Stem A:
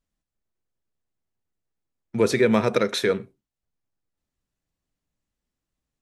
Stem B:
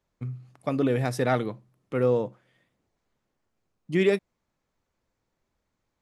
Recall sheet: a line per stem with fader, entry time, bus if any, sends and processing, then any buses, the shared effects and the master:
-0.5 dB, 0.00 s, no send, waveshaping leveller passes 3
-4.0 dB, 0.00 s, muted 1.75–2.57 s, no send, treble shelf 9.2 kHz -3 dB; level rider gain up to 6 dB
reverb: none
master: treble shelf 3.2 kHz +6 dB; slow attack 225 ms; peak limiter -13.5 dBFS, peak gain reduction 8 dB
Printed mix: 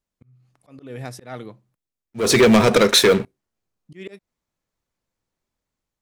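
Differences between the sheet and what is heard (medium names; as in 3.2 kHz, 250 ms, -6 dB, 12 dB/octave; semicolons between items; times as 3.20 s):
stem B -4.0 dB -> -11.5 dB; master: missing peak limiter -13.5 dBFS, peak gain reduction 8 dB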